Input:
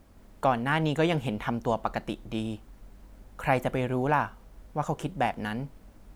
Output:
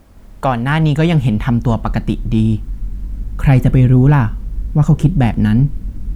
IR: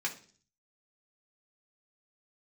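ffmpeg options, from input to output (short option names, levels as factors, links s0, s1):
-af "asubboost=boost=10.5:cutoff=210,acontrast=90,volume=1.26"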